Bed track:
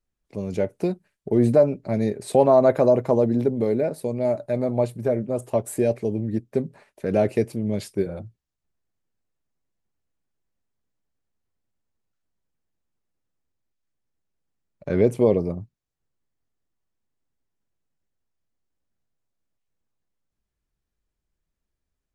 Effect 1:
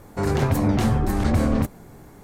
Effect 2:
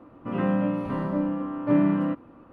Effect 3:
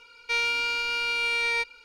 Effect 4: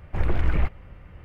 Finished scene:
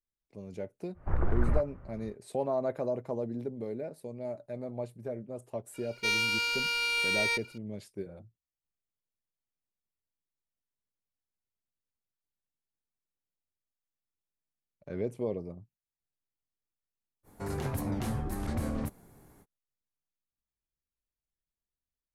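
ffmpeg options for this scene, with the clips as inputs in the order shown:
ffmpeg -i bed.wav -i cue0.wav -i cue1.wav -i cue2.wav -i cue3.wav -filter_complex "[0:a]volume=-15dB[link_01];[4:a]highshelf=frequency=1900:width_type=q:width=1.5:gain=-12[link_02];[3:a]aemphasis=mode=production:type=50kf[link_03];[1:a]equalizer=frequency=11000:width=1.9:gain=10.5[link_04];[link_02]atrim=end=1.24,asetpts=PTS-STARTPTS,volume=-5.5dB,afade=type=in:duration=0.1,afade=type=out:start_time=1.14:duration=0.1,adelay=930[link_05];[link_03]atrim=end=1.84,asetpts=PTS-STARTPTS,volume=-5dB,afade=type=in:duration=0.004:curve=hsin,afade=type=out:start_time=1.836:duration=0.004:curve=hsin,adelay=5740[link_06];[link_04]atrim=end=2.23,asetpts=PTS-STARTPTS,volume=-13dB,afade=type=in:duration=0.05,afade=type=out:start_time=2.18:duration=0.05,adelay=17230[link_07];[link_01][link_05][link_06][link_07]amix=inputs=4:normalize=0" out.wav

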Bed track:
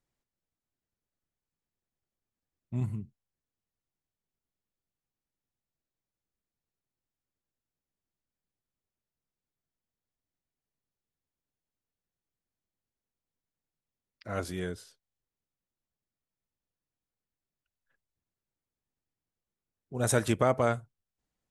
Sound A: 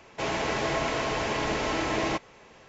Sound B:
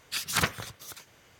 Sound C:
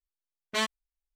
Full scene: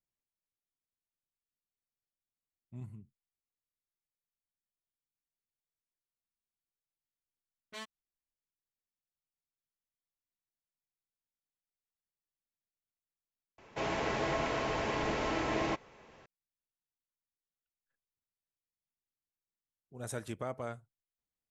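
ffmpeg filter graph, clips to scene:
ffmpeg -i bed.wav -i cue0.wav -i cue1.wav -i cue2.wav -filter_complex "[0:a]volume=-13.5dB[link_01];[1:a]highshelf=frequency=3200:gain=-6[link_02];[link_01]asplit=2[link_03][link_04];[link_03]atrim=end=13.584[link_05];[link_02]atrim=end=2.68,asetpts=PTS-STARTPTS,volume=-4.5dB[link_06];[link_04]atrim=start=16.256[link_07];[3:a]atrim=end=1.15,asetpts=PTS-STARTPTS,volume=-17dB,afade=type=in:duration=0.004:curve=hsin,afade=type=out:start_time=1.146:duration=0.004:curve=hsin,adelay=7190[link_08];[link_05][link_06]acrossfade=duration=0.004:curve1=hsin:curve2=hsin[link_09];[link_09][link_07]acrossfade=duration=0.004:curve1=hsin:curve2=hsin[link_10];[link_10][link_08]amix=inputs=2:normalize=0" out.wav

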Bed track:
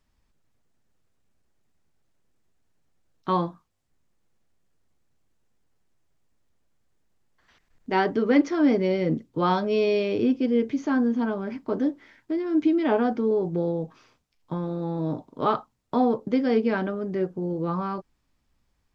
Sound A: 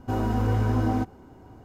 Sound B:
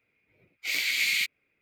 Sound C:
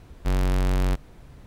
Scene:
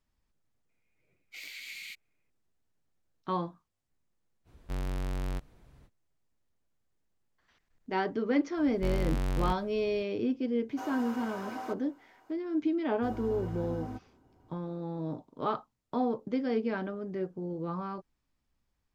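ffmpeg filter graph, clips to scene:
ffmpeg -i bed.wav -i cue0.wav -i cue1.wav -i cue2.wav -filter_complex "[3:a]asplit=2[link_01][link_02];[1:a]asplit=2[link_03][link_04];[0:a]volume=-8dB[link_05];[2:a]acompressor=threshold=-36dB:ratio=2:attack=20:release=239:knee=1:detection=peak[link_06];[link_03]highpass=790[link_07];[link_06]atrim=end=1.61,asetpts=PTS-STARTPTS,volume=-11dB,afade=type=in:duration=0.004:curve=hsin,afade=type=out:start_time=1.606:duration=0.004:curve=hsin,adelay=690[link_08];[link_01]atrim=end=1.46,asetpts=PTS-STARTPTS,volume=-11dB,afade=type=in:duration=0.05,afade=type=out:start_time=1.41:duration=0.05,adelay=4440[link_09];[link_02]atrim=end=1.46,asetpts=PTS-STARTPTS,volume=-8dB,afade=type=in:duration=0.004:curve=hsin,afade=type=out:start_time=1.456:duration=0.004:curve=hsin,adelay=8570[link_10];[link_07]atrim=end=1.64,asetpts=PTS-STARTPTS,volume=-5dB,afade=type=in:duration=0.004:curve=hsin,afade=type=out:start_time=1.636:duration=0.004:curve=hsin,adelay=10690[link_11];[link_04]atrim=end=1.64,asetpts=PTS-STARTPTS,volume=-15dB,afade=type=in:duration=0.004:curve=hsin,afade=type=out:start_time=1.636:duration=0.004:curve=hsin,adelay=12940[link_12];[link_05][link_08][link_09][link_10][link_11][link_12]amix=inputs=6:normalize=0" out.wav

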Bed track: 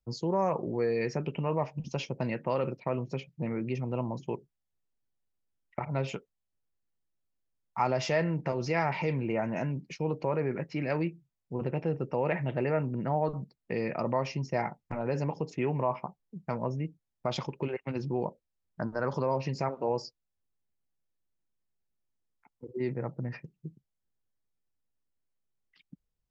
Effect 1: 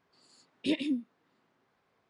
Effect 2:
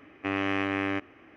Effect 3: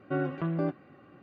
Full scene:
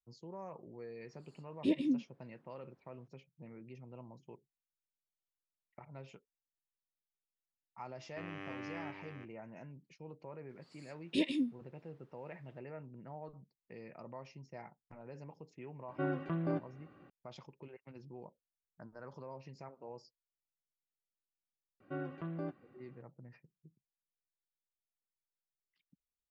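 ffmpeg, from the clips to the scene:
ffmpeg -i bed.wav -i cue0.wav -i cue1.wav -i cue2.wav -filter_complex "[1:a]asplit=2[link_01][link_02];[3:a]asplit=2[link_03][link_04];[0:a]volume=-19dB[link_05];[link_01]tiltshelf=frequency=1400:gain=6.5[link_06];[2:a]aecho=1:1:334:0.531[link_07];[link_06]atrim=end=2.09,asetpts=PTS-STARTPTS,volume=-7dB,afade=type=in:duration=0.004:curve=hsin,afade=type=out:start_time=2.086:duration=0.004:curve=hsin,adelay=990[link_08];[link_07]atrim=end=1.36,asetpts=PTS-STARTPTS,volume=-18dB,afade=type=in:duration=0.004:curve=hsin,afade=type=out:start_time=1.356:duration=0.004:curve=hsin,adelay=7920[link_09];[link_02]atrim=end=2.09,asetpts=PTS-STARTPTS,volume=-2.5dB,afade=type=in:duration=0.004:curve=hsin,afade=type=out:start_time=2.086:duration=0.004:curve=hsin,adelay=10490[link_10];[link_03]atrim=end=1.22,asetpts=PTS-STARTPTS,volume=-5.5dB,afade=type=in:duration=0.004:curve=hsin,afade=type=out:start_time=1.216:duration=0.004:curve=hsin,adelay=700308S[link_11];[link_04]atrim=end=1.22,asetpts=PTS-STARTPTS,volume=-11dB,afade=type=in:duration=0.004:curve=hsin,afade=type=out:start_time=1.216:duration=0.004:curve=hsin,adelay=961380S[link_12];[link_05][link_08][link_09][link_10][link_11][link_12]amix=inputs=6:normalize=0" out.wav

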